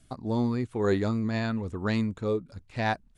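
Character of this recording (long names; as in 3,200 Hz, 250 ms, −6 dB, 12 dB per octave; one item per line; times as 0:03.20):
background noise floor −61 dBFS
spectral slope −5.0 dB per octave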